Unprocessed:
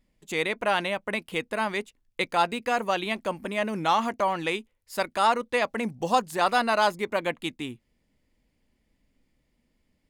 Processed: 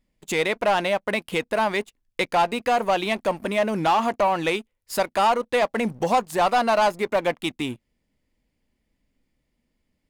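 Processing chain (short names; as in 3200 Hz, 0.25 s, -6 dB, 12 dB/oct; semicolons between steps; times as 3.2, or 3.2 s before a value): dynamic EQ 690 Hz, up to +6 dB, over -35 dBFS, Q 1.2; compressor 1.5:1, threshold -36 dBFS, peak gain reduction 8.5 dB; sample leveller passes 2; gain +1.5 dB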